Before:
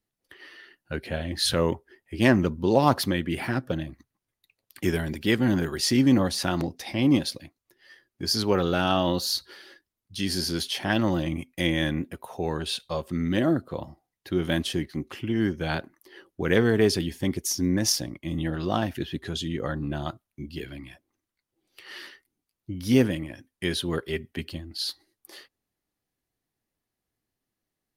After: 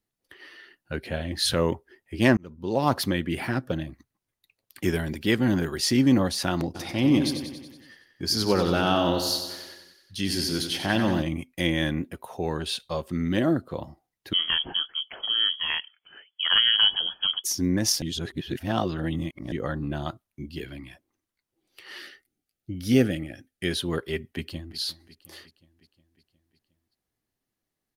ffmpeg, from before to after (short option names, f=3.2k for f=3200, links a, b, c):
-filter_complex "[0:a]asplit=3[a][b][c];[a]afade=t=out:st=6.74:d=0.02[d];[b]aecho=1:1:93|186|279|372|465|558|651|744:0.398|0.239|0.143|0.086|0.0516|0.031|0.0186|0.0111,afade=t=in:st=6.74:d=0.02,afade=t=out:st=11.21:d=0.02[e];[c]afade=t=in:st=11.21:d=0.02[f];[d][e][f]amix=inputs=3:normalize=0,asettb=1/sr,asplit=3[g][h][i];[g]atrim=end=14.334[j];[h]atrim=start=14.33:end=17.44,asetpts=PTS-STARTPTS,afade=t=in:d=0.004:c=qsin,afade=t=out:st=3.106:d=0.004:c=qsin,lowpass=f=2.9k:t=q:w=0.5098,lowpass=f=2.9k:t=q:w=0.6013,lowpass=f=2.9k:t=q:w=0.9,lowpass=f=2.9k:t=q:w=2.563,afreqshift=-3400[k];[i]atrim=start=17.436[l];[j][k]acrossfade=d=0.004:c1=hsin:c2=qsin[m];[m][l]acrossfade=d=0.004:c1=qsin:c2=hsin,asettb=1/sr,asplit=3[n][o][p];[n]atrim=end=22.024[q];[o]atrim=start=22.02:end=23.71,asetpts=PTS-STARTPTS,afade=t=in:d=0.004:c=qsin,afade=t=out:st=1.686:d=0.004:c=qsin,asuperstop=centerf=1000:order=8:qfactor=3.1[r];[p]atrim=start=23.706[s];[q][r]acrossfade=d=0.004:c1=hsin:c2=qsin[t];[t][s]acrossfade=d=0.004:c1=qsin:c2=hsin,asplit=2[u][v];[v]afade=t=in:st=24.31:d=0.01,afade=t=out:st=24.78:d=0.01,aecho=0:1:360|720|1080|1440|1800|2160:0.133352|0.0800113|0.0480068|0.0288041|0.0172824|0.0103695[w];[u][w]amix=inputs=2:normalize=0,asplit=4[x][y][z][aa];[x]atrim=end=2.37,asetpts=PTS-STARTPTS,afade=t=out:st=2.366:d=0.004:c=hsin[ab];[y]atrim=start=2.37:end=18.022,asetpts=PTS-STARTPTS,afade=t=in:d=0.68[ac];[z]atrim=start=18.018:end=19.522,asetpts=PTS-STARTPTS,areverse[ad];[aa]atrim=start=19.518[ae];[ab][ac]concat=n=2:v=0:a=1[af];[af][ad]acrossfade=d=0.004:c1=hsin:c2=hsin[ag];[ag][ae]acrossfade=d=0.004:c1=hsin:c2=hsin"